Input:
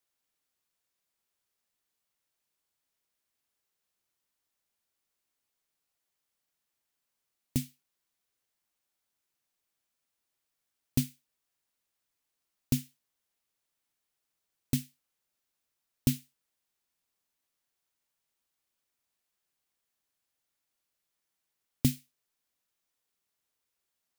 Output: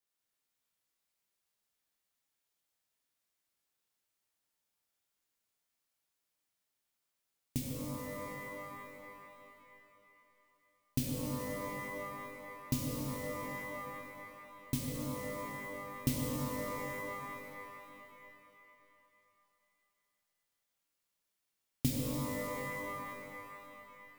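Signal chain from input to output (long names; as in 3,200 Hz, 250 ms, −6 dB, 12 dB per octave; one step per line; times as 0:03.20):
reverb with rising layers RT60 2.9 s, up +12 semitones, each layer −2 dB, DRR −2.5 dB
level −6.5 dB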